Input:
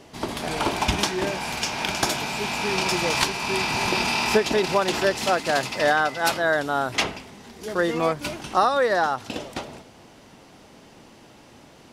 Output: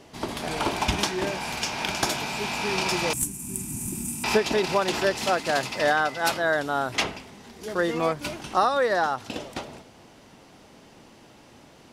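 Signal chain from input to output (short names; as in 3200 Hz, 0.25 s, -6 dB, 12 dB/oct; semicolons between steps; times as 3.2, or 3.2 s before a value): 3.13–4.24 EQ curve 300 Hz 0 dB, 460 Hz -27 dB, 2700 Hz -23 dB, 4600 Hz -26 dB, 8000 Hz +11 dB; gain -2 dB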